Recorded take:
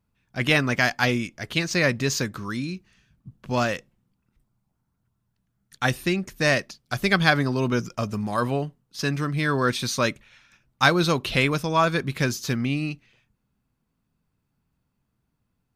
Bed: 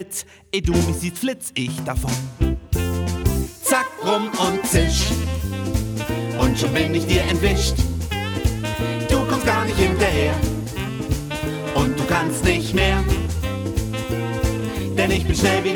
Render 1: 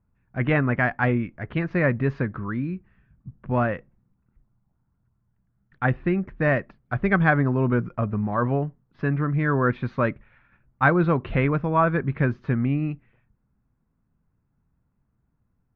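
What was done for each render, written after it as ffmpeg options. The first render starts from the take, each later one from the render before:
ffmpeg -i in.wav -af "lowpass=frequency=1900:width=0.5412,lowpass=frequency=1900:width=1.3066,lowshelf=frequency=130:gain=7.5" out.wav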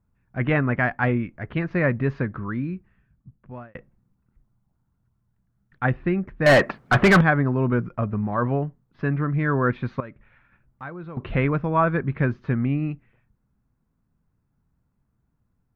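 ffmpeg -i in.wav -filter_complex "[0:a]asettb=1/sr,asplit=3[link_01][link_02][link_03];[link_01]atrim=end=6.464[link_04];[link_02]atrim=start=6.46:end=7.21,asetpts=PTS-STARTPTS,afade=type=in:duration=0.004:curve=qsin,afade=type=out:start_time=0.746:duration=0.004:curve=qsin,asplit=2[link_05][link_06];[link_06]highpass=frequency=720:poles=1,volume=32dB,asoftclip=type=tanh:threshold=-6dB[link_07];[link_05][link_07]amix=inputs=2:normalize=0,lowpass=frequency=1800:poles=1,volume=-6dB[link_08];[link_03]atrim=start=7.206[link_09];[link_04][link_08]acrossfade=duration=0.004:curve1=hsin:curve2=qsin[link_10];[link_10][link_09]acrossfade=duration=0.004:curve1=qsin:curve2=hsin,asettb=1/sr,asplit=3[link_11][link_12][link_13];[link_11]atrim=end=10.004[link_14];[link_12]atrim=start=10:end=11.17,asetpts=PTS-STARTPTS,afade=type=in:duration=0.004:curve=qsin,afade=type=out:start_time=1.166:duration=0.004:curve=qsin,acompressor=threshold=-47dB:ratio=2:attack=3.2:release=140:knee=1:detection=peak[link_15];[link_13]atrim=start=11.166[link_16];[link_14][link_15]acrossfade=duration=0.004:curve1=hsin:curve2=qsin[link_17];[link_17][link_16]acrossfade=duration=0.004:curve1=qsin:curve2=hsin,asplit=2[link_18][link_19];[link_18]atrim=end=3.75,asetpts=PTS-STARTPTS,afade=type=out:start_time=2.68:duration=1.07[link_20];[link_19]atrim=start=3.75,asetpts=PTS-STARTPTS,afade=type=in:duration=0.004:curve=hsin[link_21];[link_20][link_21]concat=n=2:v=0:a=1" out.wav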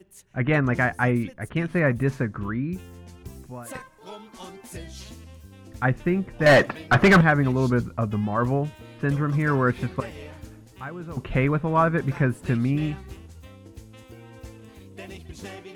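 ffmpeg -i in.wav -i bed.wav -filter_complex "[1:a]volume=-21.5dB[link_01];[0:a][link_01]amix=inputs=2:normalize=0" out.wav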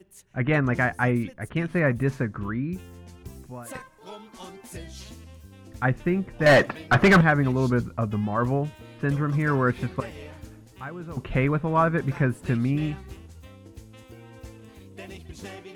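ffmpeg -i in.wav -af "volume=-1dB" out.wav

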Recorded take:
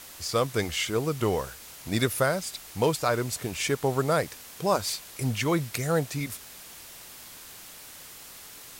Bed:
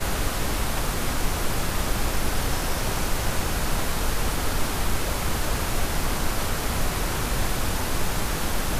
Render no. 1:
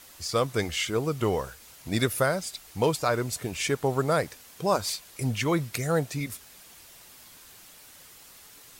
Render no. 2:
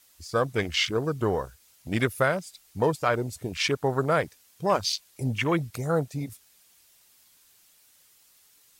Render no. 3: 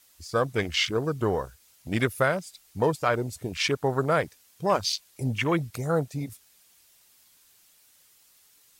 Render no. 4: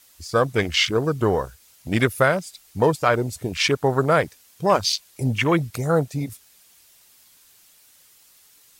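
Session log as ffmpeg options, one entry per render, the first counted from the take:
ffmpeg -i in.wav -af "afftdn=noise_reduction=6:noise_floor=-46" out.wav
ffmpeg -i in.wav -af "afwtdn=0.0224,highshelf=frequency=2200:gain=8.5" out.wav
ffmpeg -i in.wav -af anull out.wav
ffmpeg -i in.wav -af "volume=5.5dB" out.wav

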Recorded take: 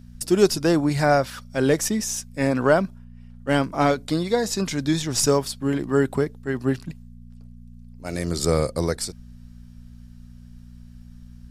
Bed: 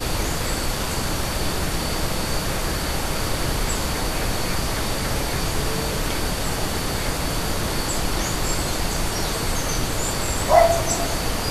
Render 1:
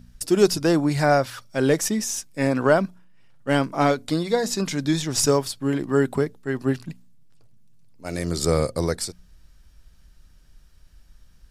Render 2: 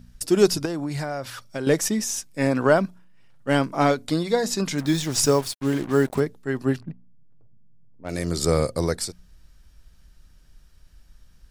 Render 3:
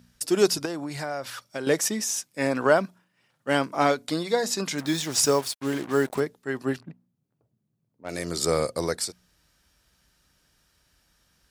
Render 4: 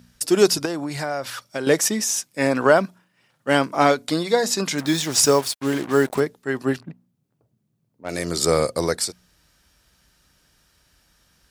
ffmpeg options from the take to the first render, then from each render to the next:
ffmpeg -i in.wav -af "bandreject=frequency=60:width_type=h:width=4,bandreject=frequency=120:width_type=h:width=4,bandreject=frequency=180:width_type=h:width=4,bandreject=frequency=240:width_type=h:width=4" out.wav
ffmpeg -i in.wav -filter_complex "[0:a]asettb=1/sr,asplit=3[link_01][link_02][link_03];[link_01]atrim=end=0.654[link_04];[link_02]atrim=start=0.65:end=1.67,asetpts=PTS-STARTPTS,afade=type=in:duration=0.004:curve=qsin,afade=type=out:start_time=1.016:duration=0.004:curve=qsin,acompressor=threshold=-24dB:ratio=10:attack=3.2:release=140:knee=1:detection=peak[link_05];[link_03]atrim=start=1.666[link_06];[link_04][link_05]acrossfade=duration=0.004:curve1=hsin:curve2=qsin[link_07];[link_07][link_06]acrossfade=duration=0.004:curve1=qsin:curve2=hsin,asettb=1/sr,asplit=3[link_08][link_09][link_10];[link_08]atrim=end=4.784[link_11];[link_09]atrim=start=4.78:end=6.2,asetpts=PTS-STARTPTS,afade=type=in:duration=0.004:curve=qsin,afade=type=out:start_time=1.416:duration=0.004:curve=qsin,acrusher=bits=5:mix=0:aa=0.5[link_12];[link_10]atrim=start=6.196[link_13];[link_11][link_12]acrossfade=duration=0.004:curve1=hsin:curve2=qsin[link_14];[link_14][link_13]acrossfade=duration=0.004:curve1=qsin:curve2=hsin,asplit=3[link_15][link_16][link_17];[link_15]afade=type=out:start_time=6.79:duration=0.02[link_18];[link_16]adynamicsmooth=sensitivity=2.5:basefreq=800,afade=type=in:start_time=6.79:duration=0.02,afade=type=out:start_time=8.08:duration=0.02[link_19];[link_17]afade=type=in:start_time=8.08:duration=0.02[link_20];[link_18][link_19][link_20]amix=inputs=3:normalize=0" out.wav
ffmpeg -i in.wav -af "highpass=69,lowshelf=frequency=230:gain=-11.5" out.wav
ffmpeg -i in.wav -af "volume=5dB,alimiter=limit=-2dB:level=0:latency=1" out.wav

